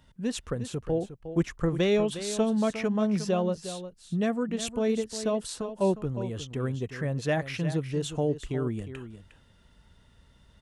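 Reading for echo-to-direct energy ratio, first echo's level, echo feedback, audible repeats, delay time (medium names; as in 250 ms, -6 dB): -11.5 dB, -11.5 dB, no regular repeats, 1, 358 ms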